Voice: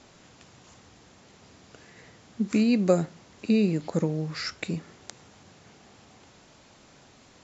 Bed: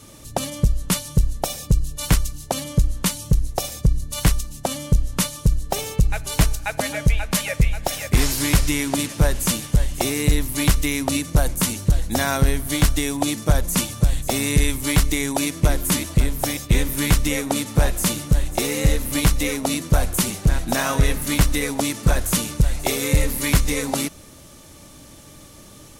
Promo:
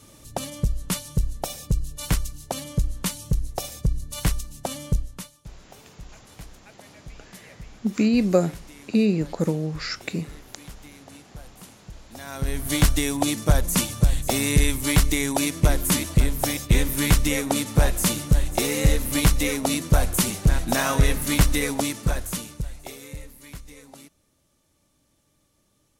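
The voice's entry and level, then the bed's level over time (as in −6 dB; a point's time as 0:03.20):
5.45 s, +2.5 dB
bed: 0:04.95 −5.5 dB
0:05.41 −25 dB
0:12.03 −25 dB
0:12.67 −1 dB
0:21.71 −1 dB
0:23.38 −23 dB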